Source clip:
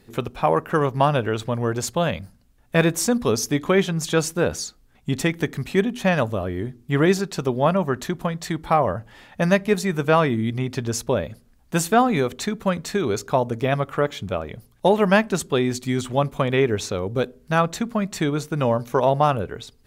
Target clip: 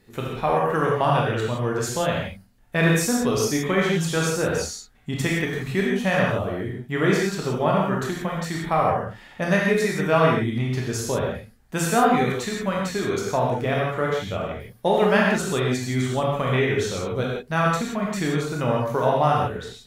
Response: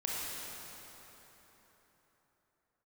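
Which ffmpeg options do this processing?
-filter_complex "[0:a]equalizer=f=1.9k:w=3.4:g=3.5[a];[1:a]atrim=start_sample=2205,afade=t=out:st=0.32:d=0.01,atrim=end_sample=14553,asetrate=66150,aresample=44100[b];[a][b]afir=irnorm=-1:irlink=0"

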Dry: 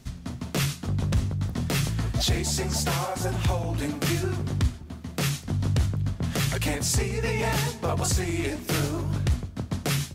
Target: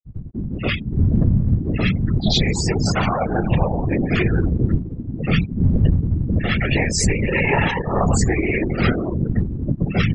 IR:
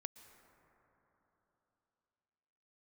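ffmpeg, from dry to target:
-filter_complex "[0:a]adynamicequalizer=threshold=0.00501:dfrequency=2200:dqfactor=1:tfrequency=2200:tqfactor=1:attack=5:release=100:ratio=0.375:range=2.5:mode=boostabove:tftype=bell,asplit=2[a][b];[1:a]atrim=start_sample=2205,adelay=93[c];[b][c]afir=irnorm=-1:irlink=0,volume=13dB[d];[a][d]amix=inputs=2:normalize=0,asoftclip=type=hard:threshold=-11dB,flanger=delay=18.5:depth=6.8:speed=0.71,afftfilt=real='re*gte(hypot(re,im),0.126)':imag='im*gte(hypot(re,im),0.126)':win_size=1024:overlap=0.75,afftfilt=real='hypot(re,im)*cos(2*PI*random(0))':imag='hypot(re,im)*sin(2*PI*random(1))':win_size=512:overlap=0.75,volume=8.5dB"

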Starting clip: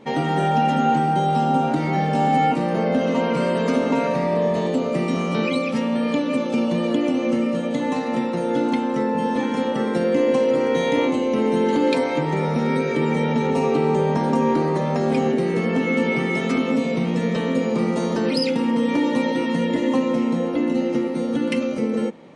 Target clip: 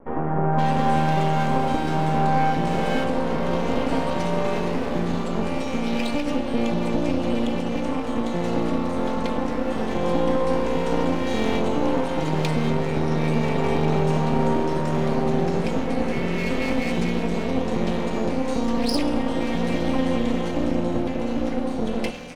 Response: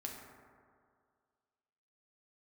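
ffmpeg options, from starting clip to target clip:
-filter_complex "[0:a]aeval=exprs='max(val(0),0)':c=same,acrossover=split=1500[a][b];[b]adelay=520[c];[a][c]amix=inputs=2:normalize=0,asplit=2[d][e];[1:a]atrim=start_sample=2205,asetrate=28665,aresample=44100[f];[e][f]afir=irnorm=-1:irlink=0,volume=-5dB[g];[d][g]amix=inputs=2:normalize=0,volume=-2dB"

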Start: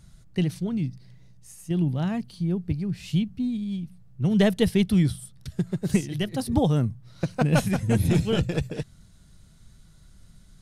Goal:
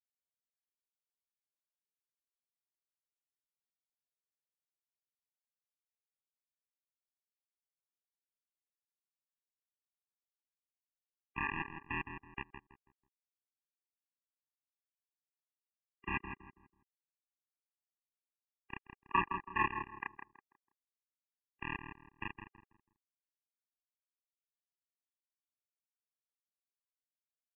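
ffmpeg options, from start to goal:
-filter_complex "[0:a]acompressor=threshold=-33dB:ratio=3,highpass=f=1.6k:t=q:w=2.7,aresample=8000,acrusher=bits=4:mix=0:aa=0.000001,aresample=44100,atempo=0.52,asplit=2[a][b];[b]adelay=121,lowpass=f=2.2k:p=1,volume=-6.5dB,asplit=2[c][d];[d]adelay=121,lowpass=f=2.2k:p=1,volume=0.33,asplit=2[e][f];[f]adelay=121,lowpass=f=2.2k:p=1,volume=0.33,asplit=2[g][h];[h]adelay=121,lowpass=f=2.2k:p=1,volume=0.33[i];[a][c][e][g][i]amix=inputs=5:normalize=0,asetrate=32667,aresample=44100,afftfilt=real='re*eq(mod(floor(b*sr/1024/400),2),0)':imag='im*eq(mod(floor(b*sr/1024/400),2),0)':win_size=1024:overlap=0.75,volume=6dB"

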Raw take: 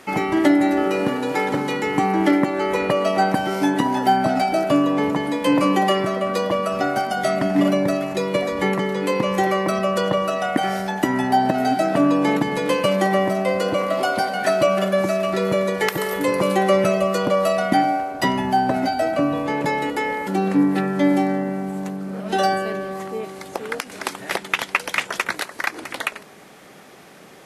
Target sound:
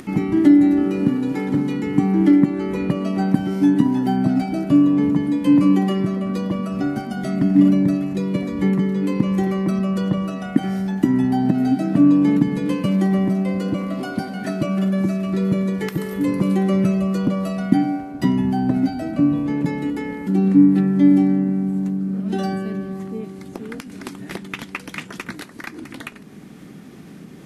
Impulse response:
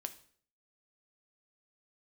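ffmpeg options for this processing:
-filter_complex "[0:a]lowshelf=f=380:t=q:w=1.5:g=14,acompressor=mode=upward:threshold=-23dB:ratio=2.5,asplit=2[a][b];[1:a]atrim=start_sample=2205,asetrate=79380,aresample=44100[c];[b][c]afir=irnorm=-1:irlink=0,volume=4dB[d];[a][d]amix=inputs=2:normalize=0,volume=-13.5dB"

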